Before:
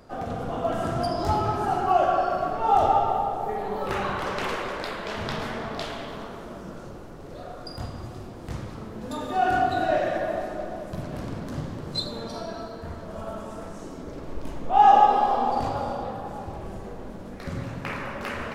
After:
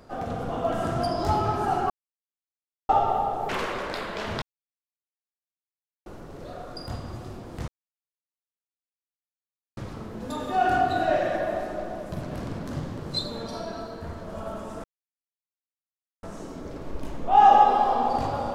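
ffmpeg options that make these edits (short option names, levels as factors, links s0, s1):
-filter_complex "[0:a]asplit=8[s0][s1][s2][s3][s4][s5][s6][s7];[s0]atrim=end=1.9,asetpts=PTS-STARTPTS,afade=t=out:st=1.896:d=0.004:c=hsin[s8];[s1]atrim=start=1.9:end=2.89,asetpts=PTS-STARTPTS,volume=0[s9];[s2]atrim=start=2.89:end=3.492,asetpts=PTS-STARTPTS,afade=t=in:d=0.004:c=hsin[s10];[s3]atrim=start=4.388:end=5.32,asetpts=PTS-STARTPTS,afade=t=out:st=0.928:d=0.004:c=hsin[s11];[s4]atrim=start=5.32:end=6.96,asetpts=PTS-STARTPTS,volume=0[s12];[s5]atrim=start=6.96:end=8.58,asetpts=PTS-STARTPTS,afade=t=in:d=0.004:c=hsin,afade=t=out:st=1.616:d=0.004:c=hsin,apad=pad_dur=2.09[s13];[s6]atrim=start=8.58:end=13.65,asetpts=PTS-STARTPTS,afade=t=in:d=0.004:c=hsin,afade=t=out:st=5.066:d=0.004:c=hsin,apad=pad_dur=1.39[s14];[s7]atrim=start=13.65,asetpts=PTS-STARTPTS,afade=t=in:d=0.004:c=hsin[s15];[s8][s9][s10]concat=n=3:v=0:a=1[s16];[s11][s12][s13][s14][s15]concat=n=5:v=0:a=1[s17];[s16][s17]acrossfade=d=0.004:c1=hsin:c2=hsin"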